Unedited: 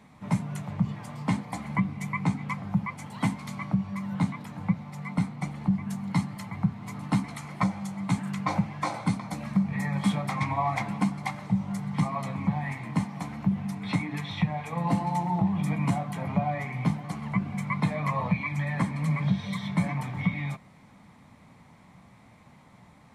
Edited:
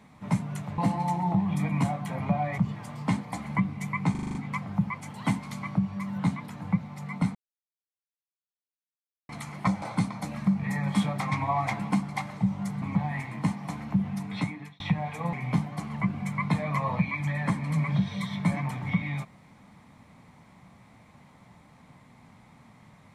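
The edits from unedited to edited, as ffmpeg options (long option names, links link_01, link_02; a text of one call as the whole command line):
ffmpeg -i in.wav -filter_complex "[0:a]asplit=15[link_01][link_02][link_03][link_04][link_05][link_06][link_07][link_08][link_09][link_10][link_11][link_12][link_13][link_14][link_15];[link_01]atrim=end=0.782[link_16];[link_02]atrim=start=14.848:end=16.652[link_17];[link_03]atrim=start=0.778:end=2.352[link_18];[link_04]atrim=start=2.308:end=2.352[link_19];[link_05]atrim=start=2.308:end=2.352[link_20];[link_06]atrim=start=2.308:end=2.352[link_21];[link_07]atrim=start=2.308:end=2.352[link_22];[link_08]atrim=start=2.308:end=2.352[link_23];[link_09]atrim=start=2.308:end=5.31,asetpts=PTS-STARTPTS,afade=type=out:start_time=2.998:duration=0.004:curve=hsin[link_24];[link_10]atrim=start=5.31:end=7.25,asetpts=PTS-STARTPTS,volume=0[link_25];[link_11]atrim=start=7.25:end=7.782,asetpts=PTS-STARTPTS,afade=type=in:duration=0.004:curve=hsin[link_26];[link_12]atrim=start=8.908:end=11.912[link_27];[link_13]atrim=start=12.338:end=14.32,asetpts=PTS-STARTPTS,afade=type=out:start_time=1.492:duration=0.49[link_28];[link_14]atrim=start=14.32:end=14.852,asetpts=PTS-STARTPTS,afade=type=in:duration=0.004:curve=hsin[link_29];[link_15]atrim=start=16.648[link_30];[link_16][link_17]acrossfade=duration=0.004:curve1=hsin:curve2=hsin[link_31];[link_31][link_18]acrossfade=duration=0.004:curve1=hsin:curve2=hsin[link_32];[link_32][link_19]acrossfade=duration=0.004:curve1=hsin:curve2=hsin[link_33];[link_33][link_20]acrossfade=duration=0.004:curve1=hsin:curve2=hsin[link_34];[link_34][link_21]acrossfade=duration=0.004:curve1=hsin:curve2=hsin[link_35];[link_35][link_22]acrossfade=duration=0.004:curve1=hsin:curve2=hsin[link_36];[link_36][link_23]acrossfade=duration=0.004:curve1=hsin:curve2=hsin[link_37];[link_24][link_25][link_26]concat=n=3:v=0:a=1[link_38];[link_37][link_38]acrossfade=duration=0.004:curve1=hsin:curve2=hsin[link_39];[link_39][link_27]acrossfade=duration=0.004:curve1=hsin:curve2=hsin[link_40];[link_28][link_29]concat=n=2:v=0:a=1[link_41];[link_40][link_41]acrossfade=duration=0.004:curve1=hsin:curve2=hsin[link_42];[link_42][link_30]acrossfade=duration=0.004:curve1=hsin:curve2=hsin" out.wav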